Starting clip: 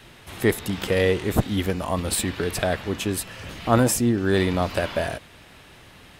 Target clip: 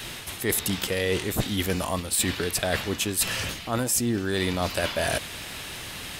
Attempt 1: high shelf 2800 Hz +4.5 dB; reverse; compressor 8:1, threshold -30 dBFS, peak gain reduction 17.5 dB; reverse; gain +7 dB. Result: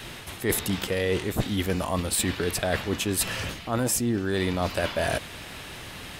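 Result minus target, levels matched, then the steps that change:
4000 Hz band -2.5 dB
change: high shelf 2800 Hz +12 dB

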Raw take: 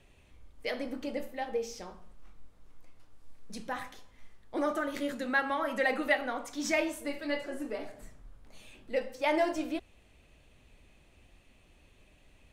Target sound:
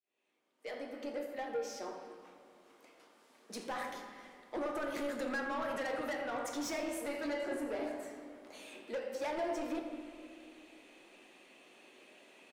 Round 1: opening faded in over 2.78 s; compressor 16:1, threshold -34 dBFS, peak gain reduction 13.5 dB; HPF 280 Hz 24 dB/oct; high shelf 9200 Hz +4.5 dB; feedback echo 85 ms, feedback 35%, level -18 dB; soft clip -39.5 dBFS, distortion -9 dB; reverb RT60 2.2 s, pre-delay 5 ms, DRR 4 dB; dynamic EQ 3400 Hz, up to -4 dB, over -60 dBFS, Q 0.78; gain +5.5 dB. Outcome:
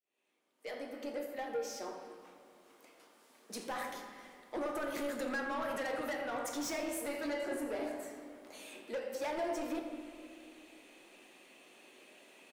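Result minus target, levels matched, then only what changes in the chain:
8000 Hz band +2.5 dB
change: high shelf 9200 Hz -5.5 dB

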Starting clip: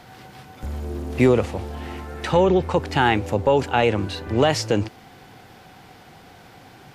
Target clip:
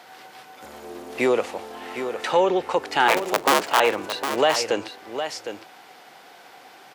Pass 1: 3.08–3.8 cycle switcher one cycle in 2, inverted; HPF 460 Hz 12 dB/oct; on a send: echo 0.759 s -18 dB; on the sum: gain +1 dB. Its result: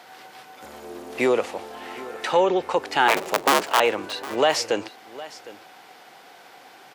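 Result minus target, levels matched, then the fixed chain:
echo-to-direct -9 dB
3.08–3.8 cycle switcher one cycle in 2, inverted; HPF 460 Hz 12 dB/oct; on a send: echo 0.759 s -9 dB; on the sum: gain +1 dB

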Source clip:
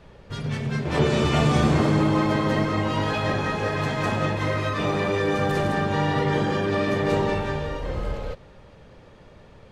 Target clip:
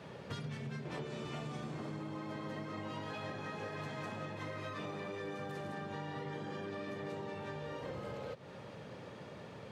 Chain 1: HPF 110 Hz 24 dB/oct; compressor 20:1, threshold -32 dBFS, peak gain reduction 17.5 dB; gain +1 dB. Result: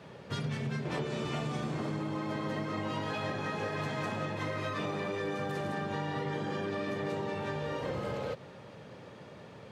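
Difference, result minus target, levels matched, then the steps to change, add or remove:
compressor: peak gain reduction -7.5 dB
change: compressor 20:1, threshold -40 dBFS, peak gain reduction 25 dB

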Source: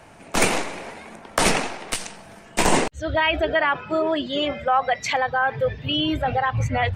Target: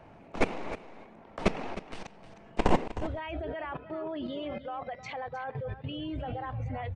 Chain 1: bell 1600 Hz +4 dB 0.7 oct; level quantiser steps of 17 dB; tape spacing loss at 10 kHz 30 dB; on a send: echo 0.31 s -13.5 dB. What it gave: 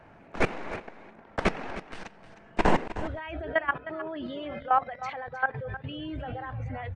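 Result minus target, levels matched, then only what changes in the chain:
2000 Hz band +4.5 dB
change: bell 1600 Hz -3.5 dB 0.7 oct

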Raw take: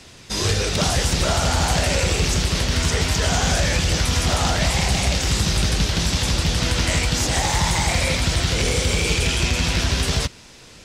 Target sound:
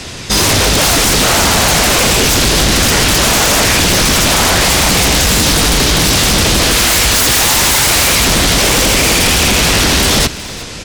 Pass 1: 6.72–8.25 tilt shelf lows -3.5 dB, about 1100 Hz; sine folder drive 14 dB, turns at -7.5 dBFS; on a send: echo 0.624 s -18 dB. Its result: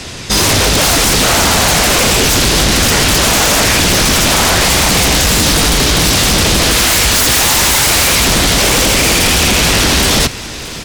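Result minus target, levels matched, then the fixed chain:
echo 0.257 s late
6.72–8.25 tilt shelf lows -3.5 dB, about 1100 Hz; sine folder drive 14 dB, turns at -7.5 dBFS; on a send: echo 0.367 s -18 dB

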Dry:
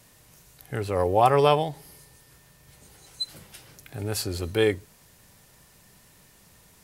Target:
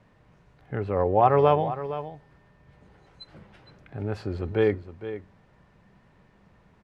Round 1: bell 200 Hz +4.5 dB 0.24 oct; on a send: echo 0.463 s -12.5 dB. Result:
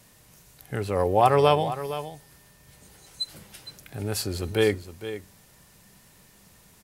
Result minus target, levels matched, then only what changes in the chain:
2000 Hz band +4.5 dB
add first: LPF 1700 Hz 12 dB/oct

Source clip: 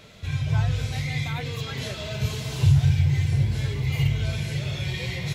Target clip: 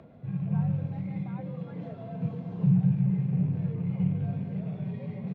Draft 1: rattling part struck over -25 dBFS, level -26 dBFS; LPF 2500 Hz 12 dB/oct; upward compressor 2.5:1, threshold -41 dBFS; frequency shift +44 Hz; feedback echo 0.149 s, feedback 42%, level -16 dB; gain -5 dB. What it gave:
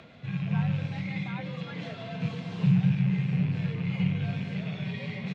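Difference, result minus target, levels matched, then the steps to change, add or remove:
2000 Hz band +16.0 dB
change: LPF 710 Hz 12 dB/oct

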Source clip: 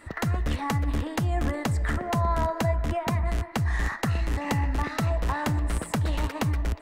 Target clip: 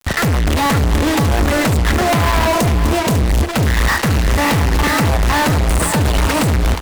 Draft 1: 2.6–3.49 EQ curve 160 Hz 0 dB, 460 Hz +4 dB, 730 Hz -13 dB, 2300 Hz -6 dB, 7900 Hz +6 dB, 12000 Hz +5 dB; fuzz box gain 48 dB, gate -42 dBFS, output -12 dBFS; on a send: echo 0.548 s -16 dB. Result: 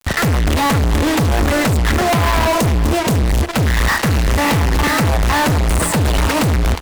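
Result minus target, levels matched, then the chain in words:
echo-to-direct -6.5 dB
2.6–3.49 EQ curve 160 Hz 0 dB, 460 Hz +4 dB, 730 Hz -13 dB, 2300 Hz -6 dB, 7900 Hz +6 dB, 12000 Hz +5 dB; fuzz box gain 48 dB, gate -42 dBFS, output -12 dBFS; on a send: echo 0.548 s -9.5 dB

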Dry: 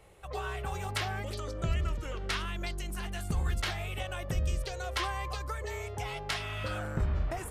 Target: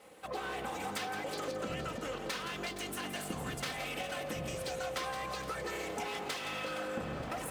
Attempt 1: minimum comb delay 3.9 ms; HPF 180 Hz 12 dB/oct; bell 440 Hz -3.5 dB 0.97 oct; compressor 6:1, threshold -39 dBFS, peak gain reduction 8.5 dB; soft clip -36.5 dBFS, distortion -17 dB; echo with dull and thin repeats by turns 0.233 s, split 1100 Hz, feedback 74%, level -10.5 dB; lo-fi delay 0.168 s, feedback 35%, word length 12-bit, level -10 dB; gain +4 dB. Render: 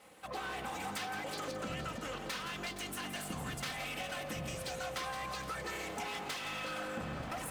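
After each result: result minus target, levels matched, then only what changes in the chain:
soft clip: distortion +11 dB; 500 Hz band -3.0 dB
change: soft clip -29 dBFS, distortion -28 dB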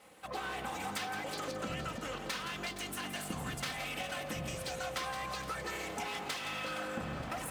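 500 Hz band -3.0 dB
change: bell 440 Hz +2.5 dB 0.97 oct

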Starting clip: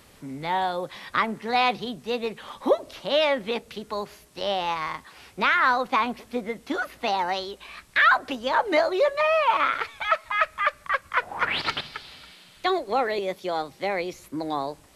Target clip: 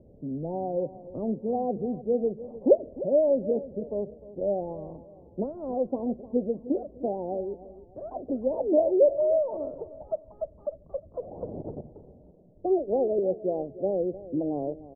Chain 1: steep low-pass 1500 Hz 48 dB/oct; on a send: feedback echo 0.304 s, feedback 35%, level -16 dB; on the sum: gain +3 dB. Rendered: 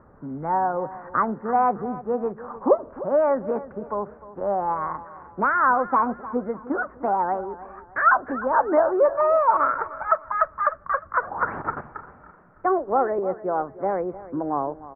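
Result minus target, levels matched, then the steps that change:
500 Hz band -3.5 dB
change: steep low-pass 630 Hz 48 dB/oct

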